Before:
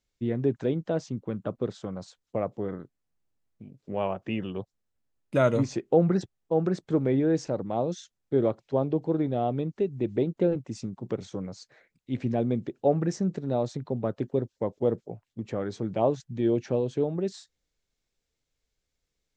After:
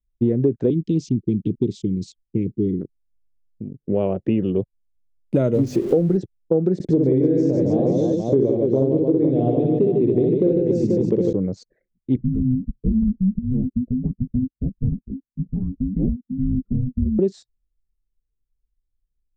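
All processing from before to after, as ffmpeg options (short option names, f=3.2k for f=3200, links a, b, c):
-filter_complex "[0:a]asettb=1/sr,asplit=3[a][b][c];[a]atrim=end=0.704[d];[b]atrim=start=0.7:end=2.81,asetpts=PTS-STARTPTS,afade=t=in:d=0.004:c=qsin,afade=t=out:st=2.106:d=0.004:c=qsin,asuperstop=centerf=920:order=12:qfactor=0.5,equalizer=f=6k:w=0.38:g=7[e];[c]atrim=start=2.806[f];[d][e]acrossfade=d=0.004:c1=hsin:c2=qsin[g];[g][f]acrossfade=d=0.004:c1=qsin:c2=hsin,asettb=1/sr,asplit=3[h][i][j];[h]atrim=end=5.544[k];[i]atrim=start=5.54:end=6.17,asetpts=PTS-STARTPTS,afade=t=in:d=0.004:c=qsin,afade=t=out:st=0.626:d=0.004:c=qsin,aeval=exprs='val(0)+0.5*0.0224*sgn(val(0))':c=same,bandreject=f=50:t=h:w=6,bandreject=f=100:t=h:w=6,bandreject=f=150:t=h:w=6,bandreject=f=200:t=h:w=6,bandreject=f=250:t=h:w=6,bandreject=f=300:t=h:w=6,bandreject=f=350:t=h:w=6[l];[j]atrim=start=6.166[m];[k][l]acrossfade=d=0.004:c1=hsin:c2=qsin[n];[n][m]acrossfade=d=0.004:c1=qsin:c2=hsin,asettb=1/sr,asplit=3[o][p][q];[o]atrim=end=6.744[r];[p]atrim=start=6.74:end=11.33,asetpts=PTS-STARTPTS,afade=t=in:d=0.004:c=qsin,afade=t=out:st=4.586:d=0.004:c=qsin,equalizer=f=1.3k:t=o:w=0.25:g=-11.5,aecho=1:1:60|150|285|487.5|791.2:0.794|0.631|0.501|0.398|0.316,atrim=end_sample=202419[s];[q]atrim=start=11.326[t];[r][s]acrossfade=d=0.004:c1=hsin:c2=qsin[u];[u][t]acrossfade=d=0.004:c1=qsin:c2=hsin,asettb=1/sr,asplit=3[v][w][x];[v]atrim=end=12.164[y];[w]atrim=start=12.16:end=17.19,asetpts=PTS-STARTPTS,afade=t=in:d=0.004:c=qsin,afade=t=out:st=5.026:d=0.004:c=qsin,flanger=delay=4.7:depth=2.3:regen=-8:speed=1.5:shape=sinusoidal,bandpass=f=140:t=q:w=0.55,afreqshift=-380[z];[x]atrim=start=17.186[aa];[y][z]acrossfade=d=0.004:c1=hsin:c2=qsin[ab];[ab][aa]acrossfade=d=0.004:c1=qsin:c2=hsin,anlmdn=0.00398,lowshelf=f=640:t=q:w=1.5:g=13,acompressor=threshold=-15dB:ratio=6"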